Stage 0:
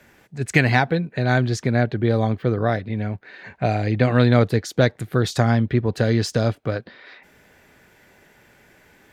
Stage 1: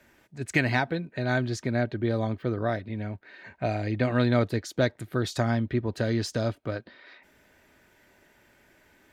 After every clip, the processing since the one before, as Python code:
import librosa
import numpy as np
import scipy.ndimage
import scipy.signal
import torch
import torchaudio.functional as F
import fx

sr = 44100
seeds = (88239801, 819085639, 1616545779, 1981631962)

y = x + 0.31 * np.pad(x, (int(3.2 * sr / 1000.0), 0))[:len(x)]
y = F.gain(torch.from_numpy(y), -7.0).numpy()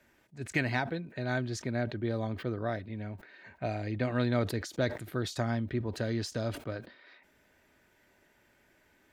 y = fx.sustainer(x, sr, db_per_s=120.0)
y = F.gain(torch.from_numpy(y), -6.0).numpy()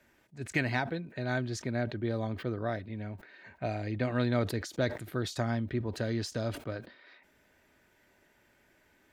y = x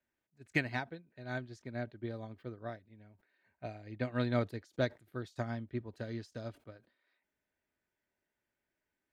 y = fx.upward_expand(x, sr, threshold_db=-40.0, expansion=2.5)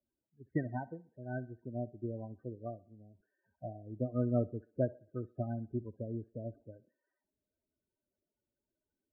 y = scipy.signal.sosfilt(scipy.signal.bessel(4, 1100.0, 'lowpass', norm='mag', fs=sr, output='sos'), x)
y = fx.spec_topn(y, sr, count=16)
y = fx.echo_thinned(y, sr, ms=63, feedback_pct=45, hz=280.0, wet_db=-20)
y = F.gain(torch.from_numpy(y), 1.5).numpy()